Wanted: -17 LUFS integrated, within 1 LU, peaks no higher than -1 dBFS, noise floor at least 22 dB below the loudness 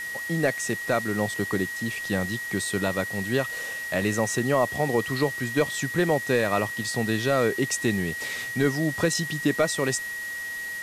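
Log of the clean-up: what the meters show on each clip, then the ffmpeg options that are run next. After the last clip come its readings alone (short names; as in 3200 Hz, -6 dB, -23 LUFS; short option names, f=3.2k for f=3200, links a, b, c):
steady tone 1900 Hz; tone level -31 dBFS; noise floor -34 dBFS; noise floor target -48 dBFS; loudness -26.0 LUFS; peak -10.5 dBFS; loudness target -17.0 LUFS
-> -af "bandreject=f=1.9k:w=30"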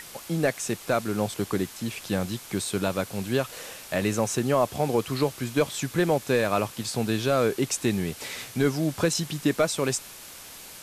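steady tone none; noise floor -44 dBFS; noise floor target -49 dBFS
-> -af "afftdn=nr=6:nf=-44"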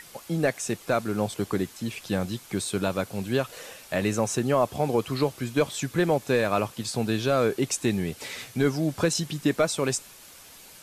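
noise floor -49 dBFS; loudness -27.0 LUFS; peak -11.5 dBFS; loudness target -17.0 LUFS
-> -af "volume=10dB"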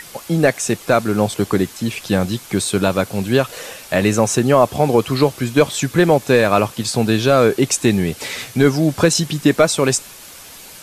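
loudness -17.0 LUFS; peak -1.5 dBFS; noise floor -39 dBFS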